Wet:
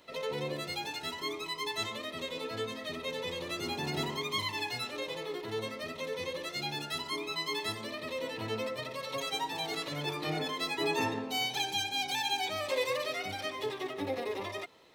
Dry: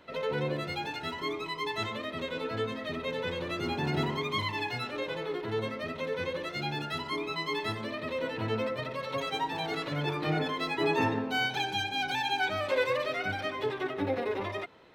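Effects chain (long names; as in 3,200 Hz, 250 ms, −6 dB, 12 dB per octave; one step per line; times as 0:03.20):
bass and treble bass −4 dB, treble +13 dB
notch filter 1,500 Hz, Q 7.4
level −3.5 dB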